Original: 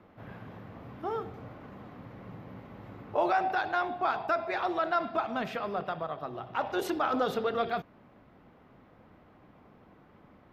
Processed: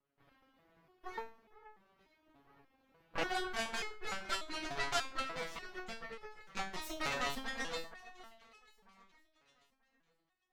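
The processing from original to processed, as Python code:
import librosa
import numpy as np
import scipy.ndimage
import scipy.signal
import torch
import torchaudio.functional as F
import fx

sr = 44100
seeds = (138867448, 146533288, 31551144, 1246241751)

y = fx.high_shelf(x, sr, hz=2900.0, db=10.5)
y = fx.cheby_harmonics(y, sr, harmonics=(3, 6, 8), levels_db=(-10, -10, -22), full_scale_db=-15.0)
y = fx.echo_alternate(y, sr, ms=470, hz=2200.0, feedback_pct=51, wet_db=-12.5)
y = fx.resonator_held(y, sr, hz=3.4, low_hz=140.0, high_hz=430.0)
y = F.gain(torch.from_numpy(y), 6.0).numpy()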